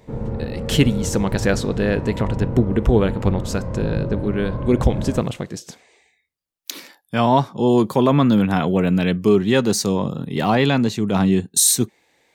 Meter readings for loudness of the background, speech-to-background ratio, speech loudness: −27.5 LKFS, 8.0 dB, −19.5 LKFS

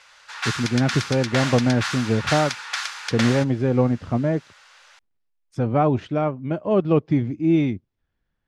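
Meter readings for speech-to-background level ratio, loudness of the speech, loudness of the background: 5.5 dB, −22.0 LKFS, −27.5 LKFS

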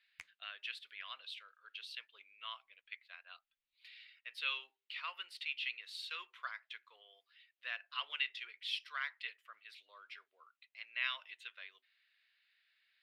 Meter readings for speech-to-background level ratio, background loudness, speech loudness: 15.0 dB, −58.0 LKFS, −43.0 LKFS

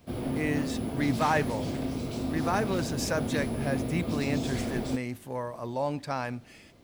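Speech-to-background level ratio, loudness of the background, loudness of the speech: 1.0 dB, −33.0 LKFS, −32.0 LKFS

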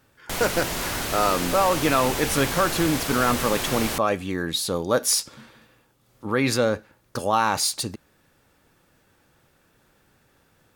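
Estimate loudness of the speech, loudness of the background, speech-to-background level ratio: −23.5 LKFS, −27.5 LKFS, 4.0 dB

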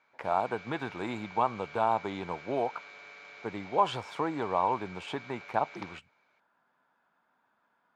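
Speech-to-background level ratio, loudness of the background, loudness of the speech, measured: 15.0 dB, −47.5 LKFS, −32.5 LKFS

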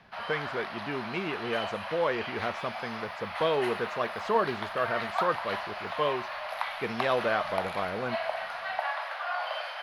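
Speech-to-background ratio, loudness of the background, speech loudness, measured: 2.5 dB, −35.0 LKFS, −32.5 LKFS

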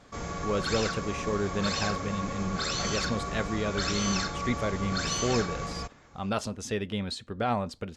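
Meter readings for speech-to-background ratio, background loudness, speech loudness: −0.5 dB, −32.0 LKFS, −32.5 LKFS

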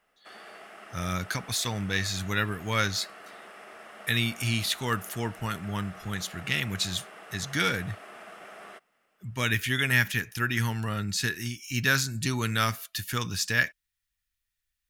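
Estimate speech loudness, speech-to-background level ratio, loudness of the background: −28.5 LKFS, 18.0 dB, −46.5 LKFS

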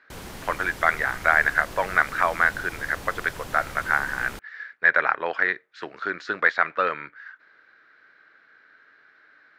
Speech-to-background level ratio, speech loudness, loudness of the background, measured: 16.0 dB, −23.5 LKFS, −39.5 LKFS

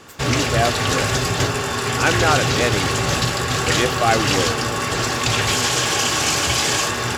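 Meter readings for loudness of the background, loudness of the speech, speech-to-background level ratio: −19.0 LKFS, −23.0 LKFS, −4.0 dB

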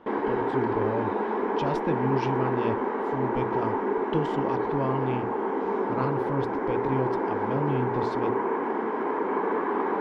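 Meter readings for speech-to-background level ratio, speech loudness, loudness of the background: −4.5 dB, −32.5 LKFS, −28.0 LKFS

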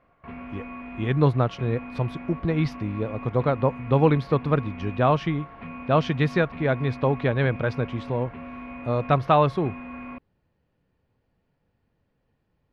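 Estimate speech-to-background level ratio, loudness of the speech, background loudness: 15.0 dB, −24.5 LKFS, −39.5 LKFS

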